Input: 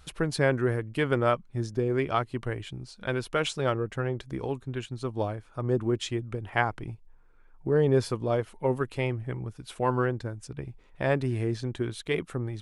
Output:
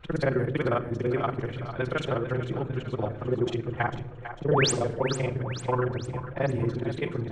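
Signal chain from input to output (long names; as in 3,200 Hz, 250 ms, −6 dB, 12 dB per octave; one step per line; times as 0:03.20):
reversed piece by piece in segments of 56 ms
high-shelf EQ 5,000 Hz −11.5 dB
notch filter 4,900 Hz, Q 7
in parallel at 0 dB: downward compressor, threshold −36 dBFS, peak gain reduction 16.5 dB
on the sum: low-pass that shuts in the quiet parts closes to 2,400 Hz, open at −19.5 dBFS
phase-vocoder stretch with locked phases 0.58×
sound drawn into the spectrogram rise, 0:04.51–0:04.72, 390–9,700 Hz −24 dBFS
on a send: echo with a time of its own for lows and highs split 490 Hz, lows 122 ms, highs 449 ms, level −10.5 dB
on the sum: rectangular room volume 3,100 cubic metres, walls furnished, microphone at 0.83 metres
level −1.5 dB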